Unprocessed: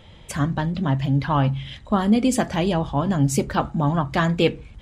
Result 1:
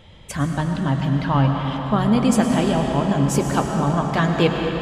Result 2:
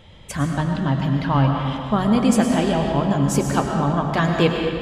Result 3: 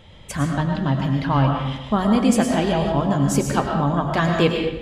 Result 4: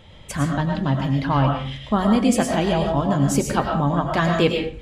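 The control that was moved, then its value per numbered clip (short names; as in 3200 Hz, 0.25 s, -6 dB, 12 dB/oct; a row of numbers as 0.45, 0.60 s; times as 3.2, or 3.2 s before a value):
digital reverb, RT60: 5, 2.3, 0.96, 0.44 s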